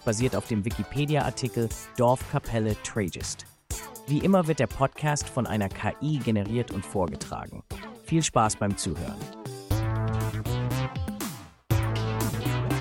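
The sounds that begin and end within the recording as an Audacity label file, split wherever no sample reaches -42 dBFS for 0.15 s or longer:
3.710000	11.490000	sound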